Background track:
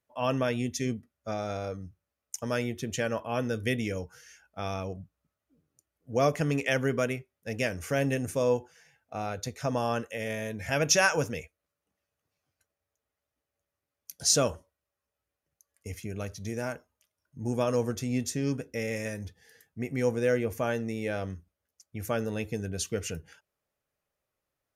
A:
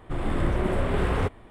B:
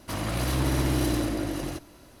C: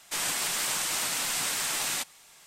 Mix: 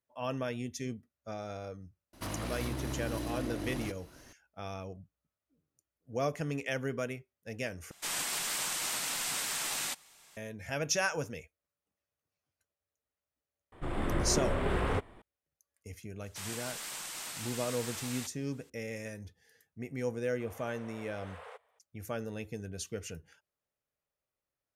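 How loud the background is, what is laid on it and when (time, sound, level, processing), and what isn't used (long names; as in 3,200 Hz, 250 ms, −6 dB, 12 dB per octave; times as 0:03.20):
background track −7.5 dB
0:02.13: mix in B −5 dB + downward compressor 5 to 1, threshold −28 dBFS
0:07.91: overwrite with C −5 dB
0:13.72: mix in A −4 dB + low-shelf EQ 220 Hz −4 dB
0:16.24: mix in C −12 dB
0:20.29: mix in A −18 dB + linear-phase brick-wall high-pass 430 Hz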